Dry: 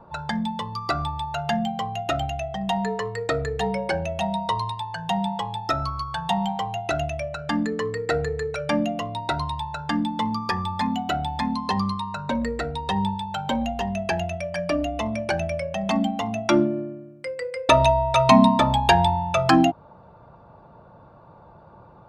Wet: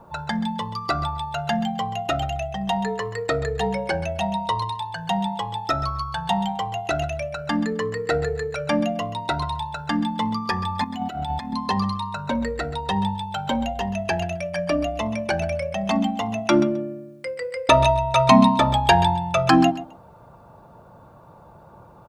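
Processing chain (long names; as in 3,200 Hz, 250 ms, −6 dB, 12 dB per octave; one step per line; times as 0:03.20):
0:10.84–0:11.53: compressor whose output falls as the input rises −29 dBFS, ratio −0.5
bit-depth reduction 12 bits, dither none
repeating echo 131 ms, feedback 16%, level −14.5 dB
level +1 dB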